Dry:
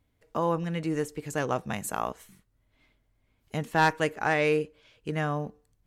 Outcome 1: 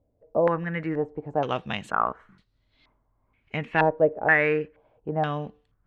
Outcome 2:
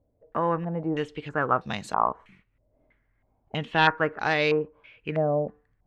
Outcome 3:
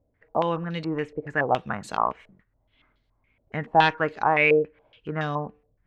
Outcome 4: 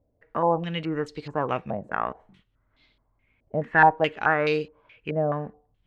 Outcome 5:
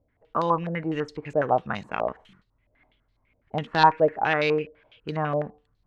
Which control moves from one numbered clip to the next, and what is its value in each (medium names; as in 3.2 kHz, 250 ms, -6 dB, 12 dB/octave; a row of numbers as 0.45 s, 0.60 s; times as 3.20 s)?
step-sequenced low-pass, rate: 2.1 Hz, 3.1 Hz, 7.1 Hz, 4.7 Hz, 12 Hz